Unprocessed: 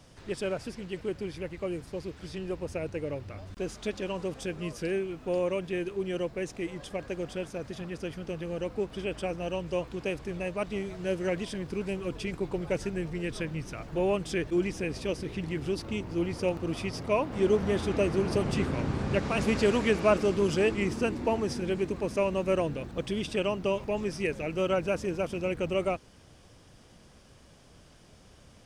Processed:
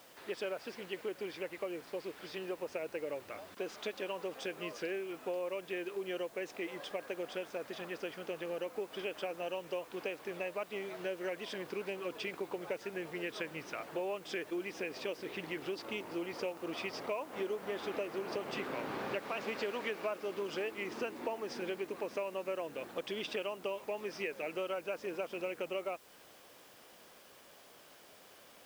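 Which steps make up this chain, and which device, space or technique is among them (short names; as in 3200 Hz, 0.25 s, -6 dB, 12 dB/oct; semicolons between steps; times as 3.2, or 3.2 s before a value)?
baby monitor (BPF 450–4100 Hz; compressor, threshold -37 dBFS, peak gain reduction 16.5 dB; white noise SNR 23 dB); gain +2 dB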